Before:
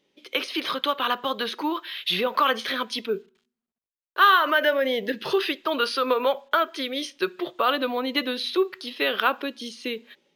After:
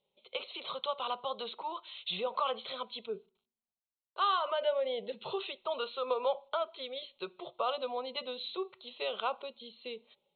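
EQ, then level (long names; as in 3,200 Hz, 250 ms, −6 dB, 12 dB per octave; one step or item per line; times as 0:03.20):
linear-phase brick-wall low-pass 4,300 Hz
high-frequency loss of the air 70 metres
phaser with its sweep stopped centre 710 Hz, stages 4
−6.5 dB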